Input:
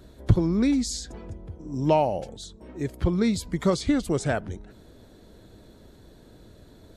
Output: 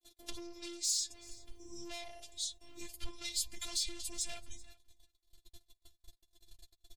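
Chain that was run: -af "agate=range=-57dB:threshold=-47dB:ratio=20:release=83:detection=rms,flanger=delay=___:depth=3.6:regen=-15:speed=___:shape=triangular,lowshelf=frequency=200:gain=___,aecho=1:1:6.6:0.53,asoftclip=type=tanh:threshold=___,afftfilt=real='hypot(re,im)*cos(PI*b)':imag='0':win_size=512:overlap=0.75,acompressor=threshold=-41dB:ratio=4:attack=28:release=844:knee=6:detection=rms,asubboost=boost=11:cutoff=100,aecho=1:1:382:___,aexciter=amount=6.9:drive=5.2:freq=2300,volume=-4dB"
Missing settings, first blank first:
8.5, 0.92, -6, -28.5dB, 0.075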